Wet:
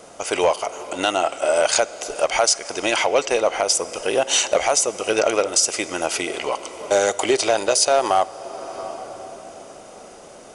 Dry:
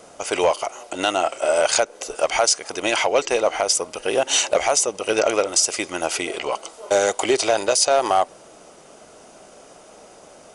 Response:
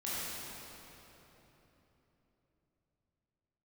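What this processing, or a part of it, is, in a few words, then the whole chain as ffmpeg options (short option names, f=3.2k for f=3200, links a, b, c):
ducked reverb: -filter_complex "[0:a]asplit=3[a][b][c];[1:a]atrim=start_sample=2205[d];[b][d]afir=irnorm=-1:irlink=0[e];[c]apad=whole_len=464838[f];[e][f]sidechaincompress=threshold=-28dB:ratio=10:attack=7:release=553,volume=-7.5dB[g];[a][g]amix=inputs=2:normalize=0"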